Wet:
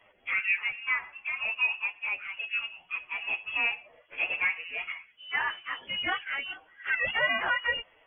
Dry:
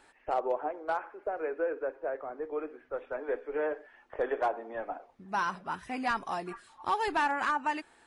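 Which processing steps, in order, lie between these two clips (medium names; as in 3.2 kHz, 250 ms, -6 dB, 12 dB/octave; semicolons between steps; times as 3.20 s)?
frequency-domain pitch shifter +7.5 st; frequency inversion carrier 3.3 kHz; trim +5 dB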